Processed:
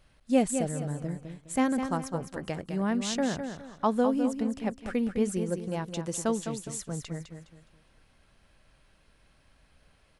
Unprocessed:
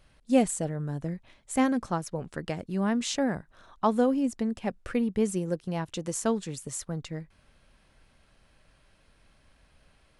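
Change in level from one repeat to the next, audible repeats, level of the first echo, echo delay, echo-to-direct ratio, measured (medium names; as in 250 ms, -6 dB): -10.0 dB, 3, -8.0 dB, 207 ms, -7.5 dB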